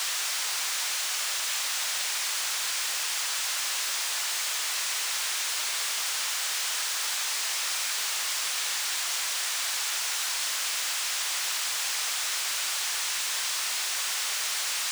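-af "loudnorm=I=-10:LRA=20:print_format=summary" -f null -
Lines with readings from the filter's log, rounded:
Input Integrated:    -26.8 LUFS
Input True Peak:     -18.0 dBTP
Input LRA:             0.1 LU
Input Threshold:     -36.8 LUFS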